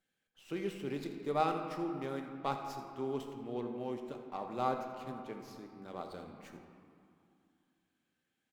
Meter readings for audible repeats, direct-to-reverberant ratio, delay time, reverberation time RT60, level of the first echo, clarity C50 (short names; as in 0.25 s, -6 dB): 1, 3.5 dB, 83 ms, 2.6 s, -14.0 dB, 5.0 dB